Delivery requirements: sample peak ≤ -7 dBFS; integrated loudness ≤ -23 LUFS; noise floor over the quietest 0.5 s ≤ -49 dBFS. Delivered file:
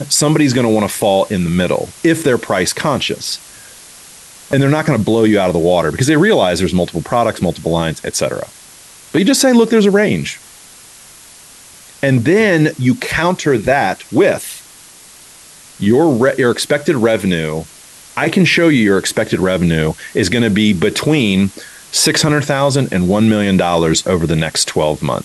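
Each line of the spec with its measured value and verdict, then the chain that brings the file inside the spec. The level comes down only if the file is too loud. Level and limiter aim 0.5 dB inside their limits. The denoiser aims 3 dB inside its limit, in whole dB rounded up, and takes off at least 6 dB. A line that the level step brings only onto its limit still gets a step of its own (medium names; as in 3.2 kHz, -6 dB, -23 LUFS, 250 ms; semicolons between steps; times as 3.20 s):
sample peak -2.0 dBFS: fail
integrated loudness -14.0 LUFS: fail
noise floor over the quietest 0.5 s -40 dBFS: fail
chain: trim -9.5 dB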